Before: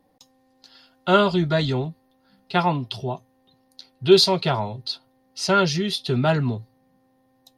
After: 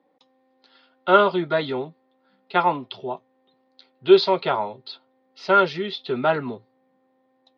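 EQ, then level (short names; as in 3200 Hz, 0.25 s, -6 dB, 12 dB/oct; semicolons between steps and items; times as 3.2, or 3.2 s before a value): dynamic EQ 950 Hz, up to +4 dB, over -29 dBFS, Q 0.71; speaker cabinet 360–3200 Hz, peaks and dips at 700 Hz -6 dB, 1000 Hz -3 dB, 1700 Hz -5 dB, 2800 Hz -6 dB; +2.5 dB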